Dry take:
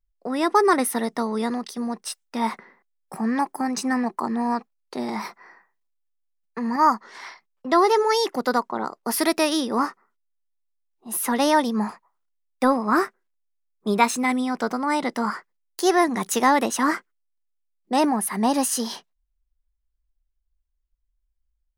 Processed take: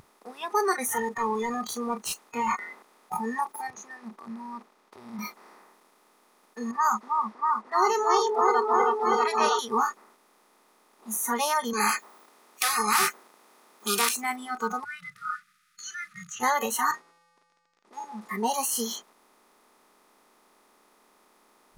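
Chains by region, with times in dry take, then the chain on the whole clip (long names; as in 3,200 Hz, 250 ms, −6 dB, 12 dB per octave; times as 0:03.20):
0:00.88–0:03.17: mid-hump overdrive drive 22 dB, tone 1,900 Hz, clips at −11 dBFS + notch filter 5,500 Hz, Q 20 + downward compressor, threshold −23 dBFS
0:03.70–0:05.19: downward compressor 3 to 1, threshold −31 dBFS + high-frequency loss of the air 240 metres + multiband upward and downward expander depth 40%
0:06.71–0:09.59: low-pass that shuts in the quiet parts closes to 510 Hz, open at −13 dBFS + low-shelf EQ 270 Hz −9 dB + echo whose low-pass opens from repeat to repeat 319 ms, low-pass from 750 Hz, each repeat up 1 octave, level 0 dB
0:11.73–0:14.09: high-pass filter 400 Hz + every bin compressed towards the loudest bin 4 to 1
0:14.84–0:16.40: linear-phase brick-wall band-stop 170–1,200 Hz + head-to-tape spacing loss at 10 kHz 21 dB + mains-hum notches 50/100/150 Hz
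0:16.91–0:18.29: running median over 15 samples + low-pass filter 6,200 Hz 24 dB per octave + tuned comb filter 170 Hz, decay 0.65 s, harmonics odd, mix 80%
whole clip: compressor on every frequency bin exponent 0.2; noise reduction from a noise print of the clip's start 28 dB; low-shelf EQ 170 Hz −3.5 dB; level −9 dB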